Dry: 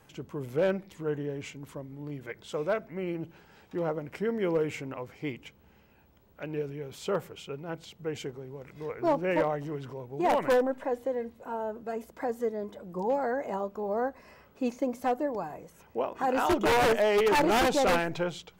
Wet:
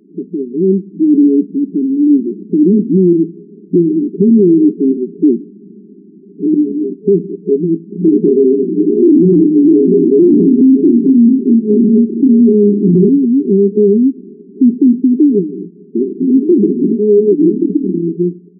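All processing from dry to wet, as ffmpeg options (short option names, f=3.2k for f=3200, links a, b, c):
-filter_complex "[0:a]asettb=1/sr,asplit=3[a][b][c];[a]atrim=end=0.934[d];[b]atrim=start=0.93:end=3.13,asetpts=PTS-STARTPTS,afade=t=in:d=0.004:c=qsin,afade=t=out:st=2.196:d=0.004:c=qsin,aecho=1:1:3.8:0.52,atrim=end_sample=97020,acontrast=77[e];[c]atrim=start=3.126[f];[d][e]acrossfade=d=0.004:c1=hsin:c2=qsin[g];[g][f]acrossfade=d=0.004:c1=qsin:c2=hsin,asettb=1/sr,asplit=3[h][i][j];[h]atrim=end=6.544[k];[i]atrim=start=6.54:end=6.94,asetpts=PTS-STARTPTS,afade=t=in:d=0.004:c=qsin,afade=t=out:st=0.396:d=0.004:c=qsin,lowshelf=f=89:g=10.5,aeval=exprs='abs(val(0))':c=same,asplit=2[l][m];[m]adelay=20,volume=-2.5dB[n];[l][n]amix=inputs=2:normalize=0,atrim=end_sample=17640[o];[j]atrim=start=6.936[p];[k][o]acrossfade=d=0.004:c1=hsin:c2=qsin[q];[q][p]acrossfade=d=0.004:c1=qsin:c2=hsin,asettb=1/sr,asplit=3[r][s][t];[r]atrim=end=7.894[u];[s]atrim=start=7.89:end=13.09,asetpts=PTS-STARTPTS,afade=t=in:d=0.004:c=qsin,afade=t=out:st=5.196:d=0.004:c=qsin,acontrast=69,asplit=2[v][w];[w]adelay=34,volume=-2dB[x];[v][x]amix=inputs=2:normalize=0,atrim=end_sample=229320,aecho=1:1:640:0.178,atrim=end_sample=229320[y];[t]atrim=start=13.086[z];[u][y]acrossfade=d=0.004:c1=hsin:c2=qsin[aa];[aa][z]acrossfade=d=0.004:c1=qsin:c2=hsin,asettb=1/sr,asplit=3[ab][ac][ad];[ab]atrim=end=17.494[ae];[ac]atrim=start=17.49:end=18.04,asetpts=PTS-STARTPTS,afade=t=in:d=0.004:c=qsin,afade=t=out:st=0.546:d=0.004:c=qsin,tremolo=f=37:d=0.889,aecho=1:1:6.4:0.45,atrim=end_sample=24255[af];[ad]atrim=start=18.036[ag];[ae][af]acrossfade=d=0.004:c1=hsin:c2=qsin[ah];[ah][ag]acrossfade=d=0.004:c1=qsin:c2=hsin,afftfilt=real='re*between(b*sr/4096,170,420)':imag='im*between(b*sr/4096,170,420)':win_size=4096:overlap=0.75,dynaudnorm=f=370:g=17:m=9dB,alimiter=level_in=22dB:limit=-1dB:release=50:level=0:latency=1,volume=-1dB"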